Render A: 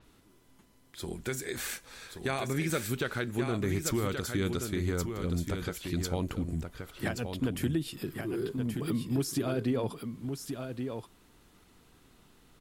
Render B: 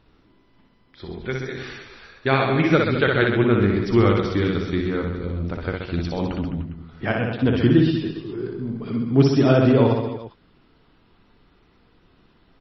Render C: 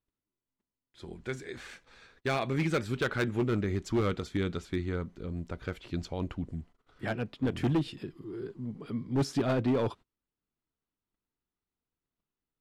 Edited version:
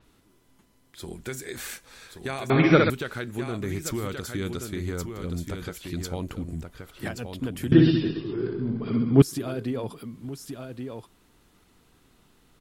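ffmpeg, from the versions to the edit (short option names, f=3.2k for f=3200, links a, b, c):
-filter_complex "[1:a]asplit=2[a][b];[0:a]asplit=3[c][d][e];[c]atrim=end=2.502[f];[a]atrim=start=2.498:end=2.902[g];[d]atrim=start=2.898:end=7.722[h];[b]atrim=start=7.718:end=9.222[i];[e]atrim=start=9.218[j];[f][g]acrossfade=d=0.004:c1=hsin:c2=hsin[k];[k][h]acrossfade=d=0.004:c1=hsin:c2=hsin[l];[l][i]acrossfade=d=0.004:c1=hsin:c2=hsin[m];[m][j]acrossfade=d=0.004:c1=hsin:c2=hsin"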